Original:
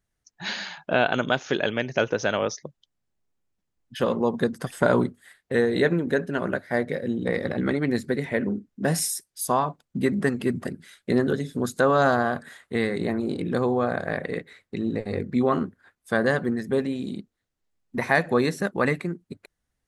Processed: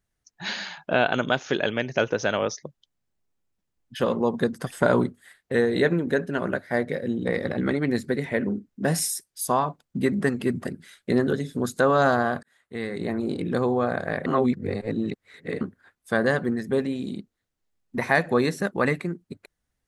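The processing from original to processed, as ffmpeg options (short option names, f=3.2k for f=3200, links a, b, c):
-filter_complex "[0:a]asplit=4[a][b][c][d];[a]atrim=end=12.43,asetpts=PTS-STARTPTS,afade=t=out:st=12.426:d=0.004:c=hsin[e];[b]atrim=start=12.43:end=14.262,asetpts=PTS-STARTPTS,afade=t=in:d=0.82[f];[c]atrim=start=14.258:end=15.612,asetpts=PTS-STARTPTS,areverse[g];[d]atrim=start=15.608[h];[e][f]concat=n=2:v=0:a=1[i];[i][g]acrossfade=d=0.004:c1=hsin:c2=hsin[j];[j][h]acrossfade=d=0.004:c1=hsin:c2=hsin"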